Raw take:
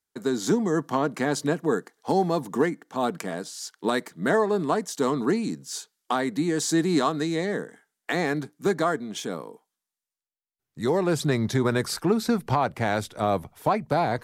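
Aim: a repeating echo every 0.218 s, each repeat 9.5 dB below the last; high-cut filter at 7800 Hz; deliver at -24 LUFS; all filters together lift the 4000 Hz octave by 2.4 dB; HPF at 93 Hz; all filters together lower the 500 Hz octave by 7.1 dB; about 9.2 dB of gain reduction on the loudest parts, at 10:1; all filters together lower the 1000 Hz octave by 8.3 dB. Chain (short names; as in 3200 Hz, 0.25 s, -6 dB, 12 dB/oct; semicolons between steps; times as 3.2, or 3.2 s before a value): HPF 93 Hz; LPF 7800 Hz; bell 500 Hz -7.5 dB; bell 1000 Hz -8.5 dB; bell 4000 Hz +3.5 dB; compressor 10:1, threshold -30 dBFS; feedback echo 0.218 s, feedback 33%, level -9.5 dB; gain +11 dB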